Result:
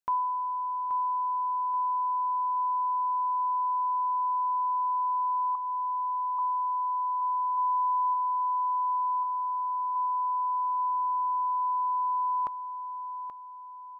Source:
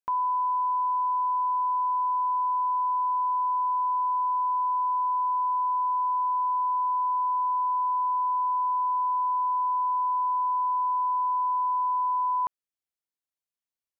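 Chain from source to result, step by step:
0:05.55–0:06.39: high-pass filter 790 Hz 12 dB per octave
reverb reduction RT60 1.4 s
0:07.57–0:08.14: comb filter 5.8 ms, depth 81%
0:09.23–0:09.96: low-pass filter 1,100 Hz 6 dB per octave
on a send: repeating echo 829 ms, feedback 44%, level −10 dB

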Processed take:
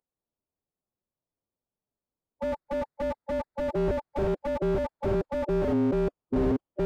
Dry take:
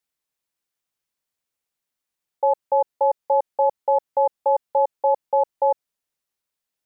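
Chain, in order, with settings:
adaptive Wiener filter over 15 samples
speech leveller 2 s
low-pass that shuts in the quiet parts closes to 810 Hz, open at −17.5 dBFS
delay with pitch and tempo change per echo 111 ms, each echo −7 semitones, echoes 3
phase-vocoder pitch shift with formants kept +1 semitone
slew-rate limiting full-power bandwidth 17 Hz
level +3 dB

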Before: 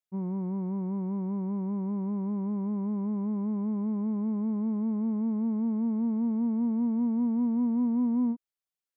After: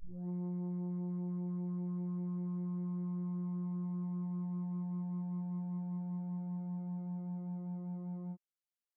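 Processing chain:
turntable start at the beginning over 0.30 s
brickwall limiter −25.5 dBFS, peak gain reduction 4 dB
phases set to zero 178 Hz
level −6.5 dB

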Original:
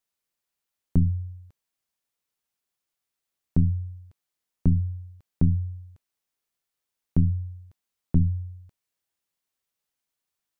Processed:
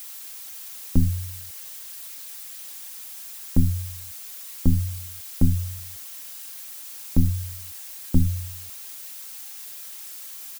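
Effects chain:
background noise blue −42 dBFS
comb filter 3.7 ms
level +1.5 dB

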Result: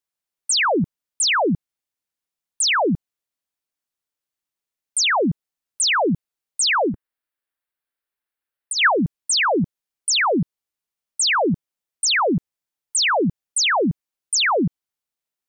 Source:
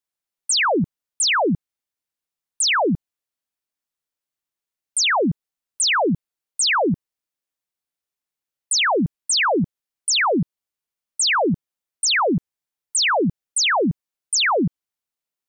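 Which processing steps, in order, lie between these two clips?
0:06.81–0:08.99: graphic EQ with 15 bands 160 Hz −11 dB, 1,600 Hz +7 dB, 6,300 Hz −11 dB

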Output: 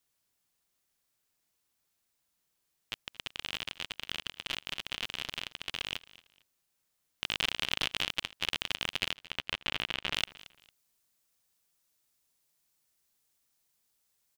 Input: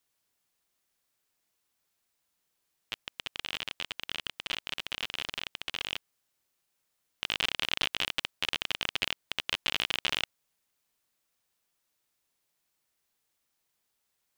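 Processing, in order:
bass and treble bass +4 dB, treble +2 dB, from 0:09.12 treble −8 dB, from 0:10.13 treble +6 dB
repeating echo 226 ms, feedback 27%, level −19.5 dB
level −2 dB

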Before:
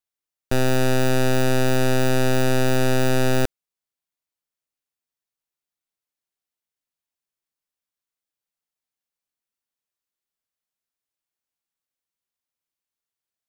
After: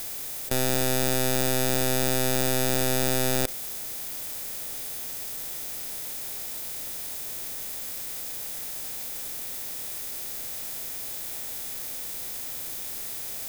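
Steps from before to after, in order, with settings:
compressor on every frequency bin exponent 0.6
first-order pre-emphasis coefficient 0.8
formants moved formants +5 semitones
envelope flattener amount 70%
level +5 dB

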